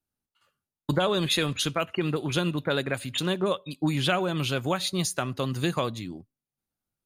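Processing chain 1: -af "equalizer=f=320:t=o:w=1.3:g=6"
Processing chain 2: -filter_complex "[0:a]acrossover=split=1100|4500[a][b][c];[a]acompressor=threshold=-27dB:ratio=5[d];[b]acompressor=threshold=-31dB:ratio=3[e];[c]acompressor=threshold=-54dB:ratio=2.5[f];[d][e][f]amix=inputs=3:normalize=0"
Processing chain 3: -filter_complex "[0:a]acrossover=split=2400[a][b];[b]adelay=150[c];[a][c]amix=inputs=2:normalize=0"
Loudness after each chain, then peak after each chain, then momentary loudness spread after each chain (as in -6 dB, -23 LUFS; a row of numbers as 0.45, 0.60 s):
-25.0, -31.0, -28.0 LUFS; -8.0, -14.0, -11.5 dBFS; 6, 5, 5 LU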